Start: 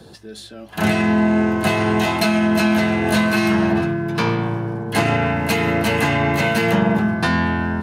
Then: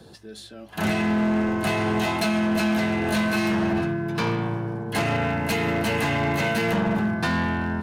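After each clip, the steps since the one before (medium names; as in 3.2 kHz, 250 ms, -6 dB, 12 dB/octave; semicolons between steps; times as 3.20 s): hard clipper -14 dBFS, distortion -15 dB; trim -4.5 dB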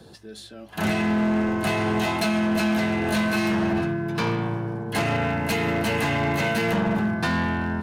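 no audible change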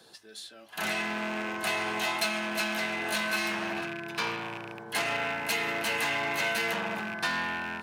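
rattle on loud lows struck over -26 dBFS, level -27 dBFS; high-pass 1.4 kHz 6 dB/octave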